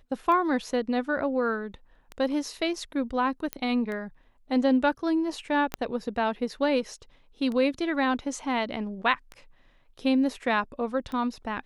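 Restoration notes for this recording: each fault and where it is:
scratch tick 33 1/3 rpm −23 dBFS
0:03.53: click −13 dBFS
0:05.74: click −13 dBFS

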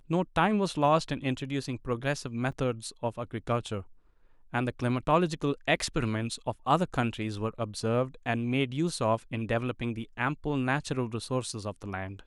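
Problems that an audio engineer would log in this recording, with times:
0:02.52: drop-out 4.2 ms

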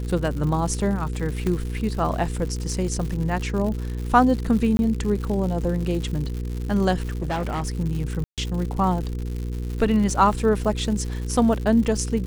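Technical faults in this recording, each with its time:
surface crackle 170 per second −30 dBFS
mains hum 60 Hz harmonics 8 −28 dBFS
0:01.47: click −14 dBFS
0:04.77–0:04.79: drop-out 21 ms
0:07.20–0:07.70: clipping −22 dBFS
0:08.24–0:08.38: drop-out 137 ms

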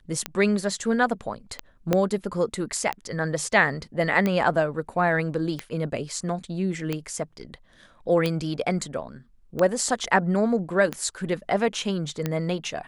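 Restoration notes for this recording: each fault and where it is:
scratch tick 45 rpm −12 dBFS
0:01.93: click −8 dBFS

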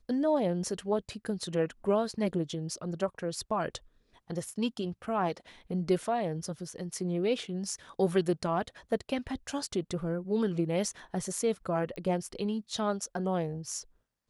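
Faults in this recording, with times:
0:11.96: click −28 dBFS

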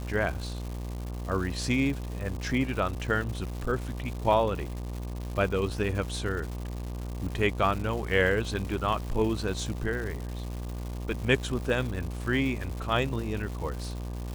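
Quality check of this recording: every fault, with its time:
mains buzz 60 Hz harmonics 20 −35 dBFS
surface crackle 310 per second −35 dBFS

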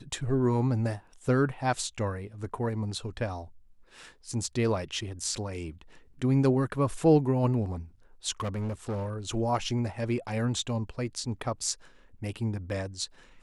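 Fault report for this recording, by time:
0:08.40–0:09.14: clipping −28.5 dBFS

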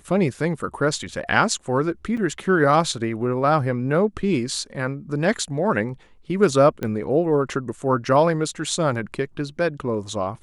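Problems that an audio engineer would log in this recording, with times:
0:02.17: drop-out 4.7 ms
0:06.83: click −14 dBFS

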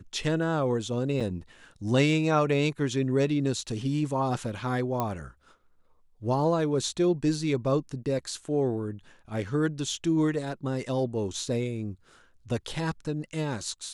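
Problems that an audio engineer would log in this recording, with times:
0:01.20–0:01.21: drop-out 5.5 ms
0:05.00: click −15 dBFS

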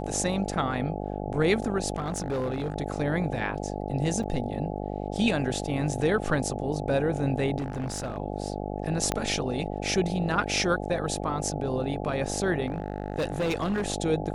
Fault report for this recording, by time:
mains buzz 50 Hz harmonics 17 −33 dBFS
0:01.96–0:02.76: clipping −25 dBFS
0:04.23–0:04.24: drop-out 5.3 ms
0:07.58–0:08.18: clipping −27 dBFS
0:09.12: click −11 dBFS
0:12.66–0:13.86: clipping −23.5 dBFS

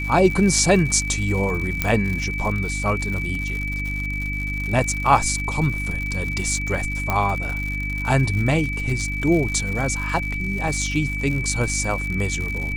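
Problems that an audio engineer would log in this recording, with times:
surface crackle 110 per second −27 dBFS
mains hum 50 Hz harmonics 6 −28 dBFS
whistle 2,300 Hz −27 dBFS
0:01.82: click −5 dBFS
0:07.10: click −8 dBFS
0:10.68: drop-out 2.1 ms

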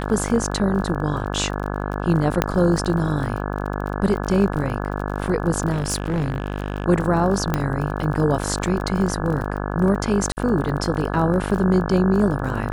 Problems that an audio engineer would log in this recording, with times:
mains buzz 50 Hz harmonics 34 −26 dBFS
surface crackle 33 per second −28 dBFS
0:02.42: click −3 dBFS
0:05.71–0:06.86: clipping −18 dBFS
0:07.54: click −7 dBFS
0:10.32–0:10.37: drop-out 49 ms

